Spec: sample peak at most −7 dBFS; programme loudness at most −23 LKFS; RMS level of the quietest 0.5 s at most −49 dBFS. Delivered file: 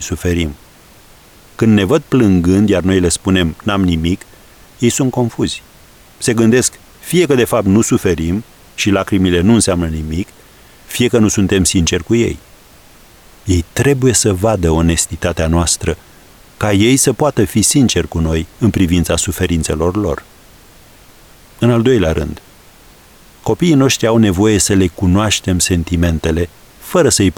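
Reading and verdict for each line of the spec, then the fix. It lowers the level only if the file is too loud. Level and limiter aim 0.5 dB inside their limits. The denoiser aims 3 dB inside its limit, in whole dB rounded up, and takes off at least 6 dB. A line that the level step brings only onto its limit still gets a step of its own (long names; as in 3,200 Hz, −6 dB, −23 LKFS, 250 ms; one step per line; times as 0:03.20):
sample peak −1.5 dBFS: out of spec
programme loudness −13.5 LKFS: out of spec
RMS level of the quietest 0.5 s −43 dBFS: out of spec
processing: level −10 dB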